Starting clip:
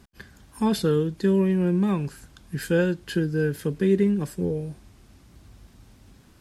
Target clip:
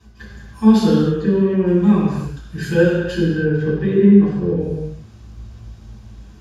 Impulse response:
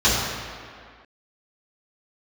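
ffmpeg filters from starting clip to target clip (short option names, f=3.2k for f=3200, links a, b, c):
-filter_complex "[0:a]asettb=1/sr,asplit=3[a][b][c];[a]atrim=end=1.194[d];[b]atrim=start=1.19:end=1.65,asetpts=PTS-STARTPTS,afade=t=in:d=0.004:c=qsin,afade=t=out:st=0.456:d=0.004:c=qsin,aemphasis=mode=reproduction:type=75fm[e];[c]atrim=start=1.646[f];[d][e]acrossfade=d=0.004:c1=hsin:c2=qsin[g];[g][f]acrossfade=d=0.004:c1=qsin:c2=hsin,asettb=1/sr,asplit=3[h][i][j];[h]atrim=end=3.224[k];[i]atrim=start=3.22:end=4.6,asetpts=PTS-STARTPTS,afade=t=in:d=0.004:c=qsin,afade=t=out:st=1.376:d=0.004:c=qsin,lowpass=3k[l];[j]atrim=start=4.596[m];[k][l]acrossfade=d=0.004:c1=hsin:c2=qsin[n];[n][m]acrossfade=d=0.004:c1=qsin:c2=hsin[o];[1:a]atrim=start_sample=2205,afade=t=out:st=0.38:d=0.01,atrim=end_sample=17199[p];[o][p]afir=irnorm=-1:irlink=0,volume=-15dB"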